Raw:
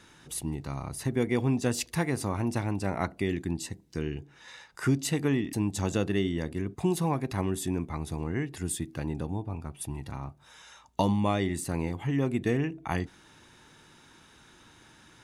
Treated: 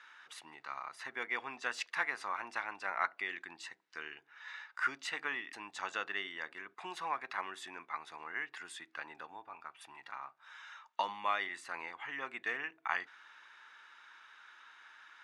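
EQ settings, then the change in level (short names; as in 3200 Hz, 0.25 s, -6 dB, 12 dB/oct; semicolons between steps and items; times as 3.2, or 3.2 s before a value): ladder band-pass 1700 Hz, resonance 35%; +12.0 dB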